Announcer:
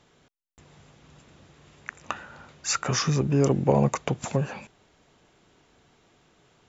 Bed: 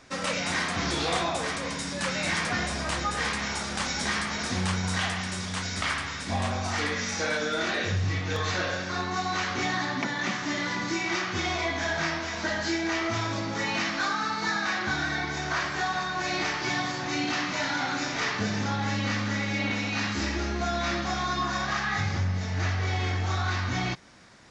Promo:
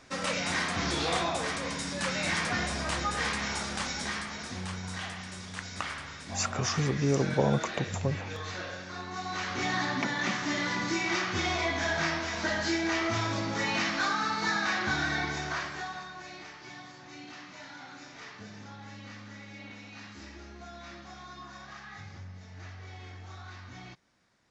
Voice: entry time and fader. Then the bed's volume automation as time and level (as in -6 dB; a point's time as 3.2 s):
3.70 s, -5.0 dB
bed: 3.63 s -2 dB
4.52 s -9.5 dB
9.03 s -9.5 dB
9.8 s -1 dB
15.26 s -1 dB
16.43 s -17.5 dB